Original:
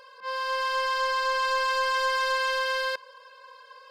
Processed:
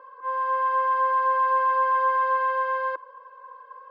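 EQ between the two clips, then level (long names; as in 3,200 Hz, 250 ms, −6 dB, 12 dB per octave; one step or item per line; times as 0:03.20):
high-pass with resonance 320 Hz, resonance Q 3.5
low-pass with resonance 1,200 Hz, resonance Q 4.7
−5.0 dB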